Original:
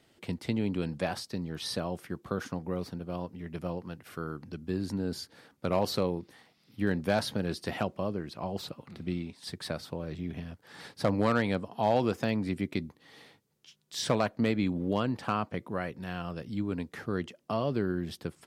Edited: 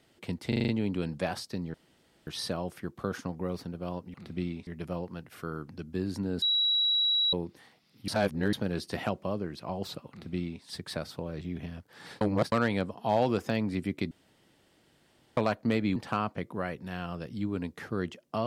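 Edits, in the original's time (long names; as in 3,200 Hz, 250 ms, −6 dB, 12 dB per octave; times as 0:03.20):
0:00.48: stutter 0.04 s, 6 plays
0:01.54: splice in room tone 0.53 s
0:05.16–0:06.07: beep over 3,890 Hz −23 dBFS
0:06.82–0:07.27: reverse
0:08.84–0:09.37: duplicate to 0:03.41
0:10.95–0:11.26: reverse
0:12.85–0:14.11: fill with room tone
0:14.70–0:15.12: remove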